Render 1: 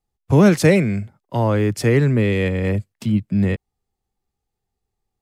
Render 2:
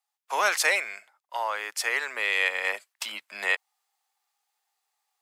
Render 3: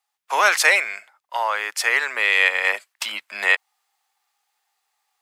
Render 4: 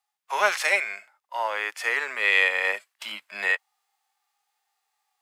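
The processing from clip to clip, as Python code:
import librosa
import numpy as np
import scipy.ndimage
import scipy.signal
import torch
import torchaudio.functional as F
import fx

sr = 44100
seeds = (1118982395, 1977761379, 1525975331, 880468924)

y1 = scipy.signal.sosfilt(scipy.signal.butter(4, 840.0, 'highpass', fs=sr, output='sos'), x)
y1 = fx.rider(y1, sr, range_db=10, speed_s=2.0)
y1 = y1 * 10.0 ** (1.5 / 20.0)
y2 = fx.peak_eq(y1, sr, hz=1800.0, db=4.0, octaves=2.5)
y2 = y2 * 10.0 ** (4.0 / 20.0)
y3 = fx.hpss(y2, sr, part='percussive', gain_db=-15)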